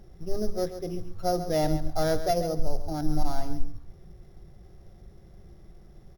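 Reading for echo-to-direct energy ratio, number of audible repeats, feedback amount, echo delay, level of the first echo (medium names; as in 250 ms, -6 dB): -11.0 dB, 2, 16%, 136 ms, -11.0 dB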